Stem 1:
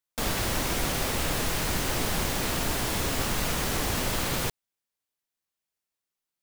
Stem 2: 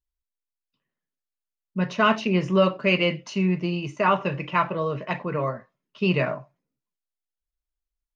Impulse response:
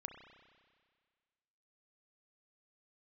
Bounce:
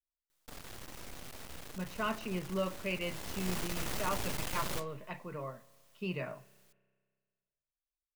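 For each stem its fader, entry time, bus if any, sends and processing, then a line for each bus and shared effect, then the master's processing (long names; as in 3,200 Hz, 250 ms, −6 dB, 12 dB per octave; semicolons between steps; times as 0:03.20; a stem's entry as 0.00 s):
0:02.99 −17 dB → 0:03.51 −6.5 dB, 0.30 s, send −7.5 dB, flanger 0.47 Hz, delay 5.3 ms, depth 7.5 ms, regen −65%; half-wave rectification; envelope flattener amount 50%
−16.5 dB, 0.00 s, send −11.5 dB, no processing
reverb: on, RT60 1.8 s, pre-delay 31 ms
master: no processing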